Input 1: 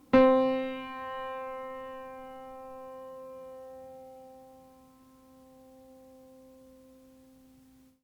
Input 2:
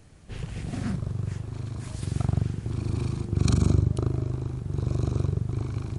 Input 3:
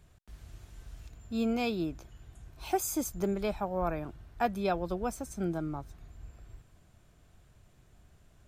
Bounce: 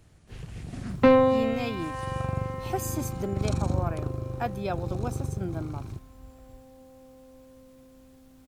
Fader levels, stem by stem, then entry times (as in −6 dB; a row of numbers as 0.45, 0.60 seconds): +2.5, −6.0, −1.5 decibels; 0.90, 0.00, 0.00 seconds